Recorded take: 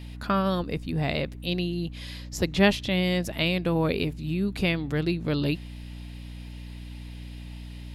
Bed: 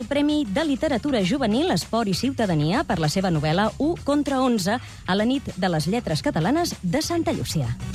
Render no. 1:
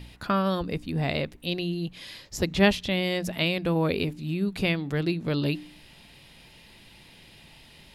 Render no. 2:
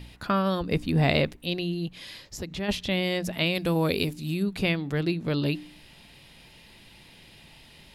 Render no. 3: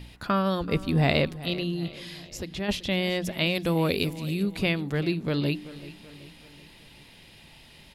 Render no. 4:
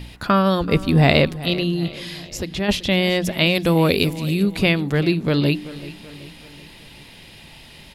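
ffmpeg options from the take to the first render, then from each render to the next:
-af "bandreject=f=60:t=h:w=4,bandreject=f=120:t=h:w=4,bandreject=f=180:t=h:w=4,bandreject=f=240:t=h:w=4,bandreject=f=300:t=h:w=4"
-filter_complex "[0:a]asettb=1/sr,asplit=3[a][b][c];[a]atrim=end=0.714[d];[b]atrim=start=0.71:end=1.33,asetpts=PTS-STARTPTS,afade=t=in:d=0.004:c=qsin,afade=t=out:st=0.616:d=0.004:c=qsin,acontrast=33[e];[c]atrim=start=1.326[f];[d][e]acrossfade=d=0.004:c1=hsin:c2=qsin[g];[g][f]acrossfade=d=0.004:c1=qsin:c2=hsin,asplit=3[h][i][j];[h]afade=t=out:st=1.88:d=0.02[k];[i]acompressor=threshold=-37dB:ratio=2:attack=3.2:release=140:knee=1:detection=peak,afade=t=in:st=1.88:d=0.02,afade=t=out:st=2.68:d=0.02[l];[j]afade=t=in:st=2.68:d=0.02[m];[k][l][m]amix=inputs=3:normalize=0,asettb=1/sr,asplit=3[n][o][p];[n]atrim=end=3.554[q];[o]atrim=start=3.55:end=4.43,asetpts=PTS-STARTPTS,afade=t=in:d=0.004:c=qsin,afade=t=out:st=0.876:d=0.004:c=qsin,bass=f=250:g=0,treble=f=4k:g=11[r];[p]atrim=start=4.426[s];[q][r]acrossfade=d=0.004:c1=hsin:c2=qsin[t];[t][s]acrossfade=d=0.004:c1=qsin:c2=hsin"
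-af "aecho=1:1:382|764|1146|1528:0.141|0.072|0.0367|0.0187"
-af "volume=8dB"

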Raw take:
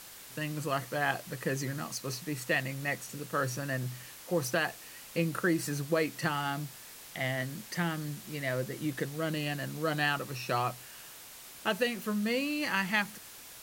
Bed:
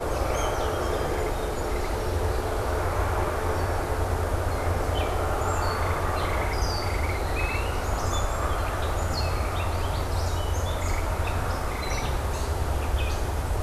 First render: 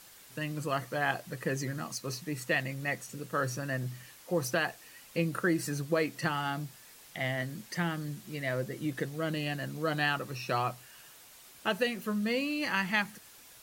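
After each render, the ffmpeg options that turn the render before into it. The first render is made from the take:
-af "afftdn=nr=6:nf=-49"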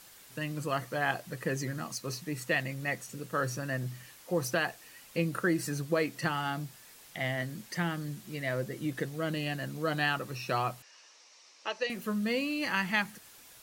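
-filter_complex "[0:a]asettb=1/sr,asplit=3[a][b][c];[a]atrim=end=10.824[d];[b]atrim=start=10.82:end=11.9,asetpts=PTS-STARTPTS,afade=t=in:d=0.004:c=qsin,afade=t=out:st=1.076:d=0.004:c=qsin,highpass=f=370:w=0.5412,highpass=f=370:w=1.3066,equalizer=f=390:t=q:w=4:g=-8,equalizer=f=710:t=q:w=4:g=-7,equalizer=f=1.5k:t=q:w=4:g=-9,equalizer=f=3.3k:t=q:w=4:g=-6,equalizer=f=5.7k:t=q:w=4:g=8,lowpass=f=5.9k:w=0.5412,lowpass=f=5.9k:w=1.3066[e];[c]atrim=start=11.896[f];[d][e]acrossfade=d=0.004:c1=hsin:c2=qsin[g];[g][f]acrossfade=d=0.004:c1=qsin:c2=hsin"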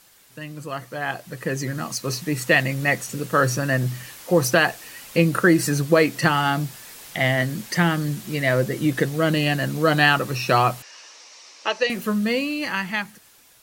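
-af "dynaudnorm=f=320:g=11:m=14dB"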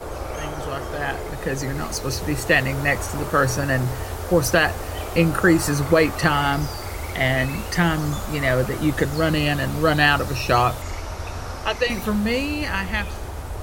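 -filter_complex "[1:a]volume=-4dB[a];[0:a][a]amix=inputs=2:normalize=0"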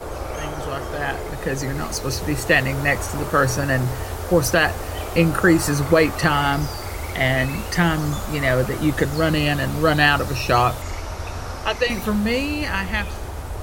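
-af "volume=1dB,alimiter=limit=-3dB:level=0:latency=1"

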